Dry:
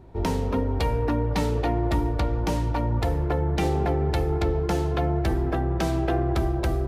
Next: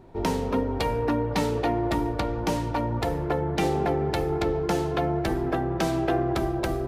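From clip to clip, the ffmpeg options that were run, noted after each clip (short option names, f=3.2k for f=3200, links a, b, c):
-af "equalizer=f=66:t=o:w=1.3:g=-12.5,volume=1.5dB"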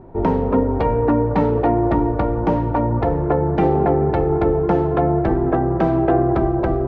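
-af "lowpass=1.2k,volume=8.5dB"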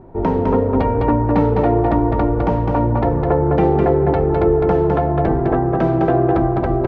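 -af "aecho=1:1:207:0.668"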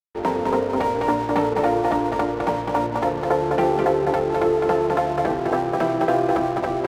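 -af "highpass=f=650:p=1,aeval=exprs='sgn(val(0))*max(abs(val(0))-0.0133,0)':c=same,volume=2dB"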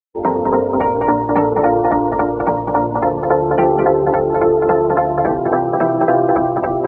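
-af "afftdn=nr=23:nf=-30,volume=6dB"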